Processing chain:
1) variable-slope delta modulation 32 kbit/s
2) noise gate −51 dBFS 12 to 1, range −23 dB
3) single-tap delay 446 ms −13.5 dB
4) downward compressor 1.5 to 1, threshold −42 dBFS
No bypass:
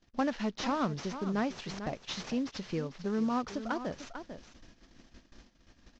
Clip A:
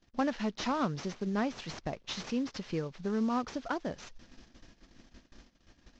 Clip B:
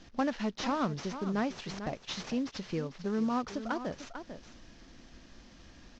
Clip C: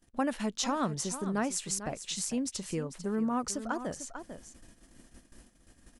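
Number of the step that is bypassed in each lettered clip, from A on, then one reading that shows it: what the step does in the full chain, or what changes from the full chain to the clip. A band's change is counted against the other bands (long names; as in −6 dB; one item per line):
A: 3, change in momentary loudness spread −3 LU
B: 2, change in momentary loudness spread +2 LU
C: 1, 4 kHz band +2.5 dB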